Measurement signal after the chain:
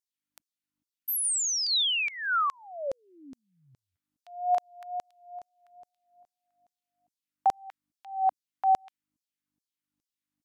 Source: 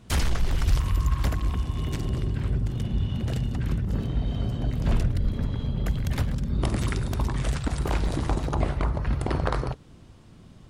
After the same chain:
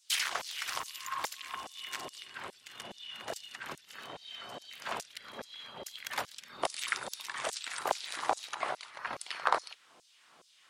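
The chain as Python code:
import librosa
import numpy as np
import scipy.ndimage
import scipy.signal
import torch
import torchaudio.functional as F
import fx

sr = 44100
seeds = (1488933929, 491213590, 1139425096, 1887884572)

y = fx.dmg_buzz(x, sr, base_hz=50.0, harmonics=6, level_db=-58.0, tilt_db=-7, odd_only=False)
y = fx.filter_lfo_highpass(y, sr, shape='saw_down', hz=2.4, low_hz=600.0, high_hz=6300.0, q=1.6)
y = fx.wow_flutter(y, sr, seeds[0], rate_hz=2.1, depth_cents=19.0)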